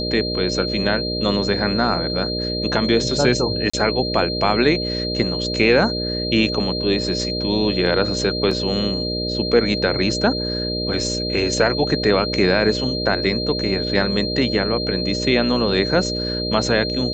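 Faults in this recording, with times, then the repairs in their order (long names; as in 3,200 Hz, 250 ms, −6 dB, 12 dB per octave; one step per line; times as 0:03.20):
mains buzz 60 Hz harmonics 10 −26 dBFS
whistle 4,200 Hz −25 dBFS
0:03.70–0:03.73: drop-out 35 ms
0:08.51: drop-out 4.2 ms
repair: hum removal 60 Hz, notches 10
notch filter 4,200 Hz, Q 30
repair the gap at 0:03.70, 35 ms
repair the gap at 0:08.51, 4.2 ms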